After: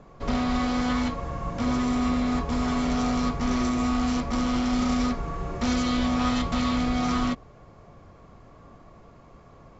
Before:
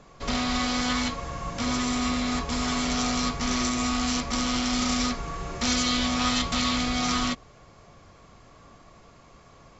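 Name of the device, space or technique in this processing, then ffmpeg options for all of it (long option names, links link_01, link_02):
through cloth: -af "highshelf=frequency=2000:gain=-15,volume=3.5dB"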